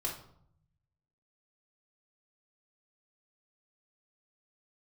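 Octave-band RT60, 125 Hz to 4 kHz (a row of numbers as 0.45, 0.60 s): 1.4, 0.95, 0.65, 0.65, 0.45, 0.45 s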